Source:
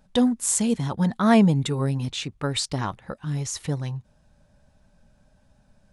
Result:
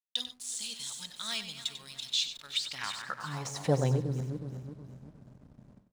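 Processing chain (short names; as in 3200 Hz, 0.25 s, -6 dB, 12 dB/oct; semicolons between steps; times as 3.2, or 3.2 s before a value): regenerating reverse delay 0.183 s, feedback 65%, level -14 dB; de-esser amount 70%; RIAA curve playback; high-pass sweep 3800 Hz -> 340 Hz, 2.47–4.11; tone controls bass +13 dB, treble +11 dB; backlash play -47.5 dBFS; gate with hold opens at -47 dBFS; echo 95 ms -11 dB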